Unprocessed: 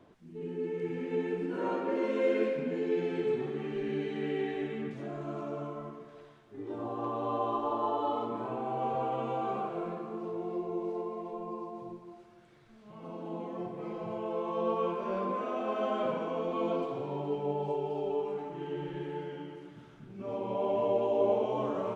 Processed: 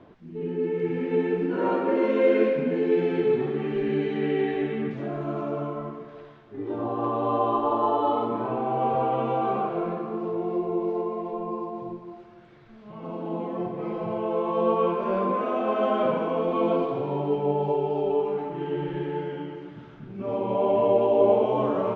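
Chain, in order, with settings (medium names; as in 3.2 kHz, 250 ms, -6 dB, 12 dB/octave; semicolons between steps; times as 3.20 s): distance through air 170 m; trim +8.5 dB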